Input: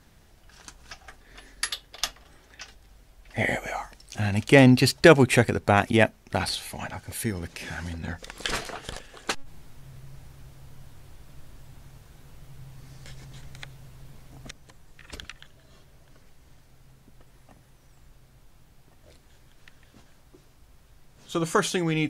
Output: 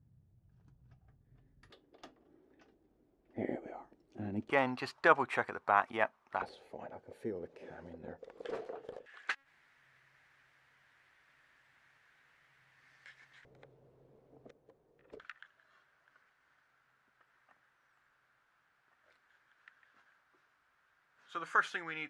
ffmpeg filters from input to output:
ffmpeg -i in.wav -af "asetnsamples=nb_out_samples=441:pad=0,asendcmd='1.7 bandpass f 330;4.5 bandpass f 1100;6.42 bandpass f 470;9.06 bandpass f 1800;13.45 bandpass f 450;15.2 bandpass f 1500',bandpass=frequency=120:width_type=q:width=3.2:csg=0" out.wav

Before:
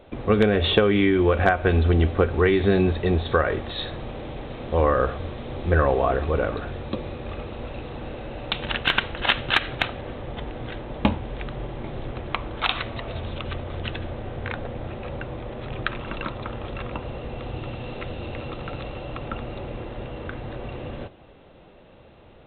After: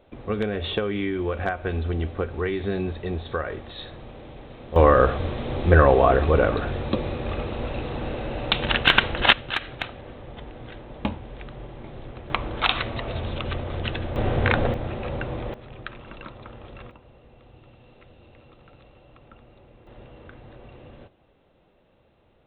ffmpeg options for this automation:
ffmpeg -i in.wav -af "asetnsamples=nb_out_samples=441:pad=0,asendcmd='4.76 volume volume 4.5dB;9.33 volume volume -6.5dB;12.3 volume volume 2dB;14.16 volume volume 10dB;14.74 volume volume 3dB;15.54 volume volume -9.5dB;16.91 volume volume -18.5dB;19.87 volume volume -11.5dB',volume=-7.5dB" out.wav

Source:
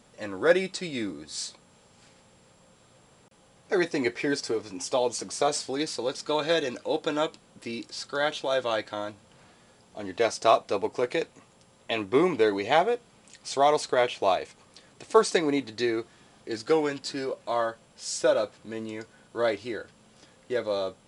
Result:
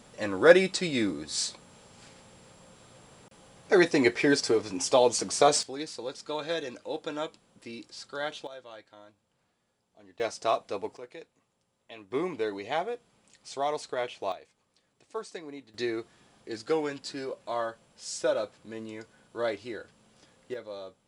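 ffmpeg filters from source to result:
ffmpeg -i in.wav -af "asetnsamples=nb_out_samples=441:pad=0,asendcmd='5.63 volume volume -7dB;8.47 volume volume -19dB;10.2 volume volume -6.5dB;10.97 volume volume -17.5dB;12.11 volume volume -8.5dB;14.32 volume volume -17dB;15.74 volume volume -4.5dB;20.54 volume volume -12dB',volume=4dB" out.wav

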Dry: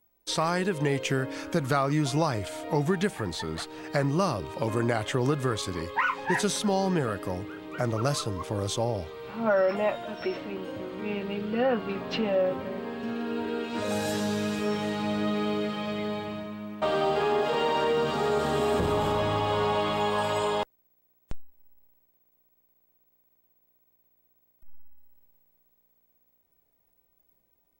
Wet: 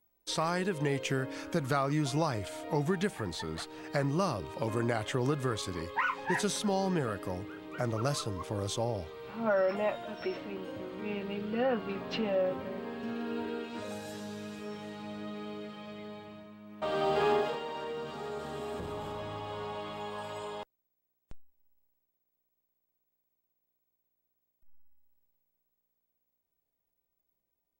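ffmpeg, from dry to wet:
ffmpeg -i in.wav -af "volume=7.5dB,afade=type=out:start_time=13.4:duration=0.61:silence=0.375837,afade=type=in:start_time=16.64:duration=0.66:silence=0.251189,afade=type=out:start_time=17.3:duration=0.3:silence=0.251189" out.wav

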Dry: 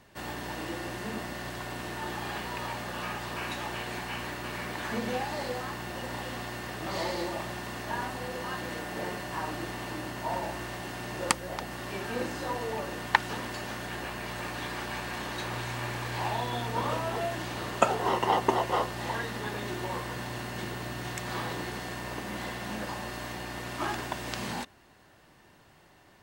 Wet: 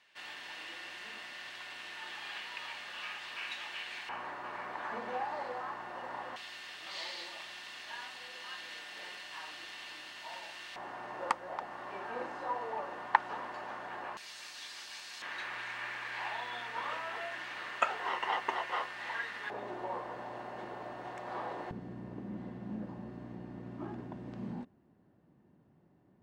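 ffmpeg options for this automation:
ffmpeg -i in.wav -af "asetnsamples=nb_out_samples=441:pad=0,asendcmd='4.09 bandpass f 990;6.36 bandpass f 3300;10.76 bandpass f 940;14.17 bandpass f 5100;15.22 bandpass f 1900;19.5 bandpass f 700;21.71 bandpass f 200',bandpass=frequency=2800:width_type=q:width=1.4:csg=0" out.wav

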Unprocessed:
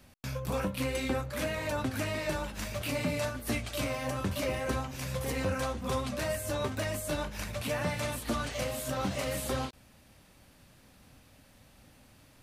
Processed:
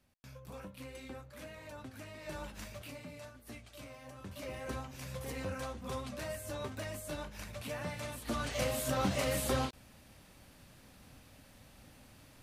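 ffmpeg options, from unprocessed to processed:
ffmpeg -i in.wav -af "volume=10.5dB,afade=type=in:start_time=2.19:duration=0.27:silence=0.375837,afade=type=out:start_time=2.46:duration=0.55:silence=0.316228,afade=type=in:start_time=4.17:duration=0.57:silence=0.354813,afade=type=in:start_time=8.17:duration=0.49:silence=0.375837" out.wav

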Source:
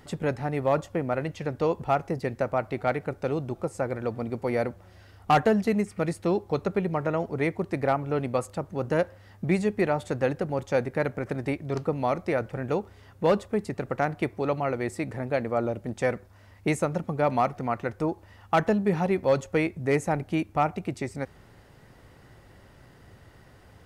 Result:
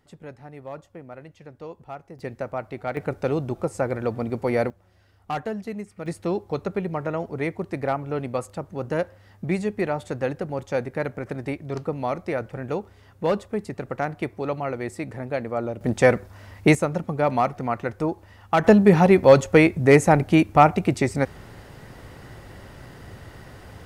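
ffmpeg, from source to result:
ffmpeg -i in.wav -af "asetnsamples=nb_out_samples=441:pad=0,asendcmd='2.19 volume volume -3.5dB;2.97 volume volume 4dB;4.7 volume volume -8dB;6.06 volume volume -0.5dB;15.81 volume volume 9.5dB;16.75 volume volume 2.5dB;18.64 volume volume 10dB',volume=-13dB" out.wav

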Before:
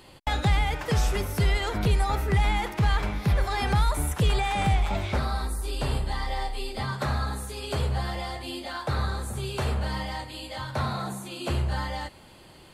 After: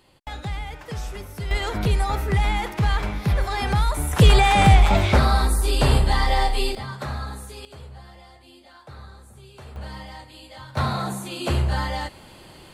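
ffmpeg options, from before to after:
ffmpeg -i in.wav -af "asetnsamples=nb_out_samples=441:pad=0,asendcmd='1.51 volume volume 2dB;4.13 volume volume 10dB;6.75 volume volume -2.5dB;7.65 volume volume -14.5dB;9.76 volume volume -6dB;10.77 volume volume 5dB',volume=-7.5dB" out.wav

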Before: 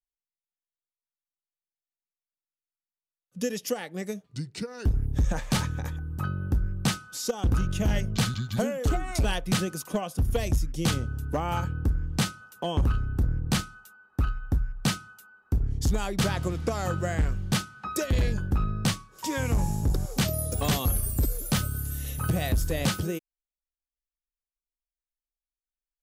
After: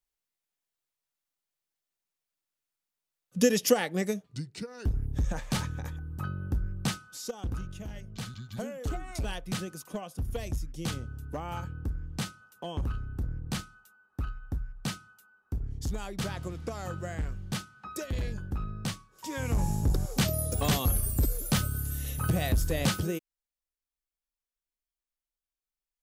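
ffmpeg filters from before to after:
ffmpeg -i in.wav -af "volume=22.5dB,afade=type=out:start_time=3.81:duration=0.65:silence=0.281838,afade=type=out:start_time=6.85:duration=1.08:silence=0.237137,afade=type=in:start_time=7.93:duration=0.93:silence=0.354813,afade=type=in:start_time=19.25:duration=0.46:silence=0.446684" out.wav

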